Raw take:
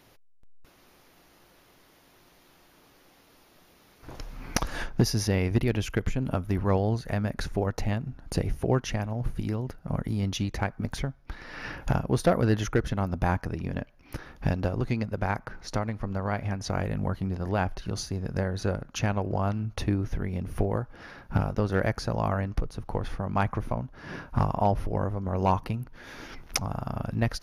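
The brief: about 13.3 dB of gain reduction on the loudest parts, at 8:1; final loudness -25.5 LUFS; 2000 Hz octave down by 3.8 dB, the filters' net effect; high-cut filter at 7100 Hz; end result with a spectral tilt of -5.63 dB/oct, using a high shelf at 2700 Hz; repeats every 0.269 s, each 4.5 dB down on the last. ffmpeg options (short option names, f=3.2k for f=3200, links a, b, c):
-af "lowpass=7.1k,equalizer=f=2k:t=o:g=-7,highshelf=f=2.7k:g=4.5,acompressor=threshold=-32dB:ratio=8,aecho=1:1:269|538|807|1076|1345|1614|1883|2152|2421:0.596|0.357|0.214|0.129|0.0772|0.0463|0.0278|0.0167|0.01,volume=11dB"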